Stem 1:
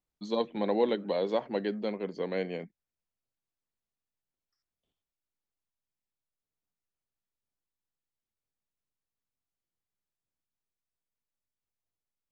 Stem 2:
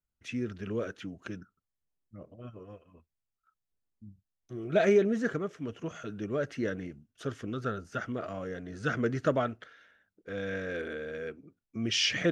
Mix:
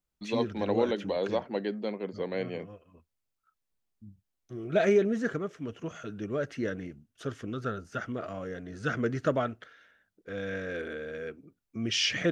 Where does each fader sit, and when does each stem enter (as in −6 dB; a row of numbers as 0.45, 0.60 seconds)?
−0.5, 0.0 decibels; 0.00, 0.00 seconds